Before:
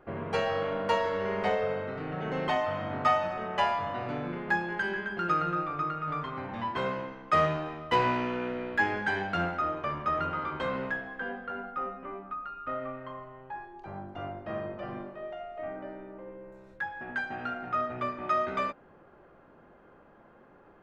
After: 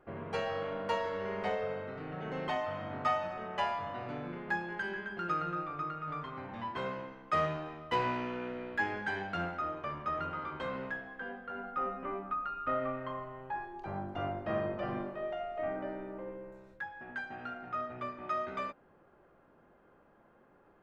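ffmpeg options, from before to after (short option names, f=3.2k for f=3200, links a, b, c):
-af "volume=2dB,afade=t=in:st=11.46:d=0.58:silence=0.398107,afade=t=out:st=16.23:d=0.62:silence=0.354813"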